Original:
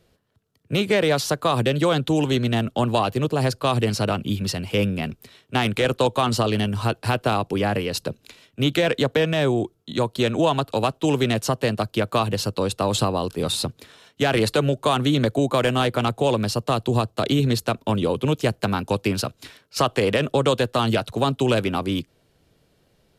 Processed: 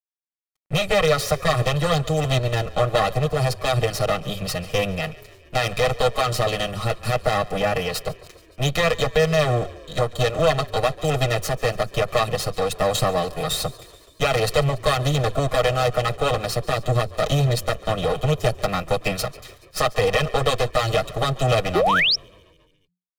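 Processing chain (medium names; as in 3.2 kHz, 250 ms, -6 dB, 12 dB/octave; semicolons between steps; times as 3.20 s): comb filter that takes the minimum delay 6.4 ms; comb 1.6 ms, depth 80%; crossover distortion -49.5 dBFS; frequency-shifting echo 142 ms, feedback 65%, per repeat -30 Hz, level -20.5 dB; painted sound rise, 21.75–22.16 s, 330–5800 Hz -18 dBFS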